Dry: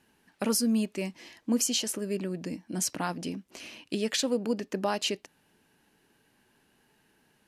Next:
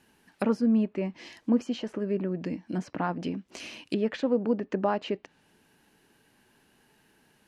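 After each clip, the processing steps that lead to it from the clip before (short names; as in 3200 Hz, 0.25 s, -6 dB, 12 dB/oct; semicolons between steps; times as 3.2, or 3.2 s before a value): treble ducked by the level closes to 1500 Hz, closed at -28.5 dBFS; gain +3 dB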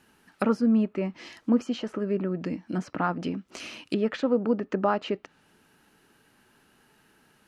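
bell 1300 Hz +9.5 dB 0.23 oct; gain +1.5 dB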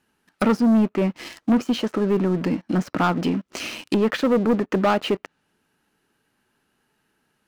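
sample leveller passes 3; gain -2 dB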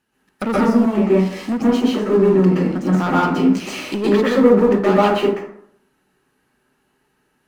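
plate-style reverb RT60 0.67 s, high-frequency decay 0.5×, pre-delay 0.11 s, DRR -7.5 dB; gain -3.5 dB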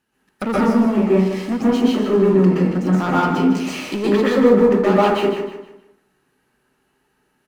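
feedback echo 0.154 s, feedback 33%, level -9.5 dB; gain -1 dB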